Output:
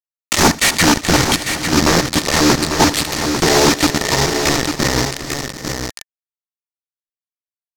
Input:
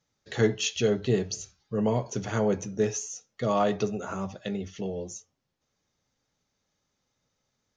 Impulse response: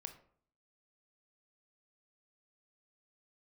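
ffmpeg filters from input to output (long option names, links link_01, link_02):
-filter_complex "[0:a]asplit=2[link_01][link_02];[link_02]adelay=12,volume=-2.5dB[link_03];[link_01][link_03]amix=inputs=2:normalize=0,asetrate=31183,aresample=44100,atempo=1.41421,asplit=2[link_04][link_05];[link_05]acompressor=threshold=-32dB:ratio=10,volume=2dB[link_06];[link_04][link_06]amix=inputs=2:normalize=0,acrusher=bits=3:mix=0:aa=0.000001,highshelf=frequency=4200:width_type=q:width=1.5:gain=12,bandreject=frequency=1800:width=20,aeval=exprs='0.596*sin(PI/2*10*val(0)/0.596)':channel_layout=same,adynamicsmooth=sensitivity=3:basefreq=2800,asplit=2[link_07][link_08];[link_08]aecho=0:1:72|268|419|650|738|847:0.106|0.141|0.158|0.126|0.15|0.447[link_09];[link_07][link_09]amix=inputs=2:normalize=0,adynamicequalizer=threshold=0.0447:dfrequency=5800:dqfactor=0.7:tfrequency=5800:tqfactor=0.7:attack=5:release=100:ratio=0.375:range=2:mode=cutabove:tftype=highshelf"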